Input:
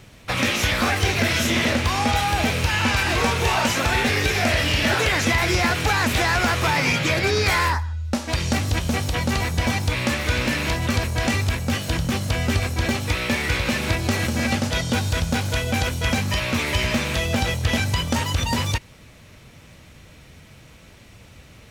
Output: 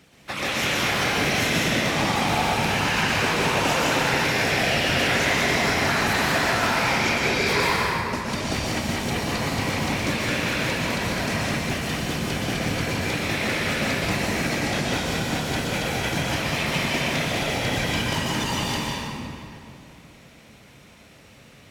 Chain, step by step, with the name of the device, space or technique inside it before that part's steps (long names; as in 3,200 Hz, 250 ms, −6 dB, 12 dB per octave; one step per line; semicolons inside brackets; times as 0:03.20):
whispering ghost (random phases in short frames; high-pass filter 200 Hz 6 dB per octave; convolution reverb RT60 2.6 s, pre-delay 113 ms, DRR −4.5 dB)
level −6 dB